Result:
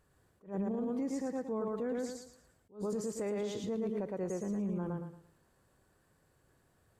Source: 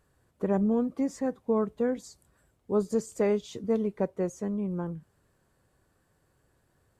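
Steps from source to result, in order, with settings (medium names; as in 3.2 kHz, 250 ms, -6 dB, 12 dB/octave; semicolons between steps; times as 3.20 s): thinning echo 113 ms, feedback 32%, high-pass 160 Hz, level -3 dB; peak limiter -26.5 dBFS, peak gain reduction 13.5 dB; attacks held to a fixed rise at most 220 dB/s; trim -2 dB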